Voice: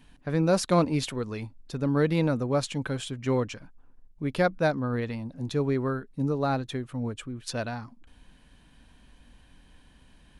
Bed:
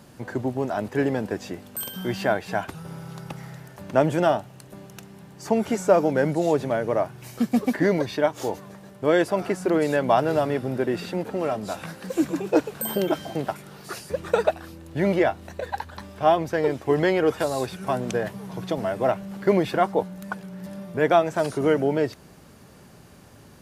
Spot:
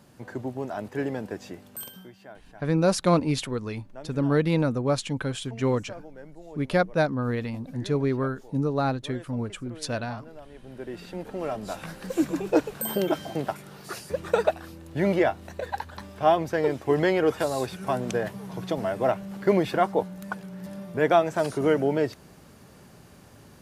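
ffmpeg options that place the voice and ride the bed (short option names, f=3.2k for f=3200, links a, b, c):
-filter_complex "[0:a]adelay=2350,volume=1.5dB[a];[1:a]volume=16dB,afade=t=out:st=1.81:d=0.3:silence=0.133352,afade=t=in:st=10.54:d=1.45:silence=0.0794328[b];[a][b]amix=inputs=2:normalize=0"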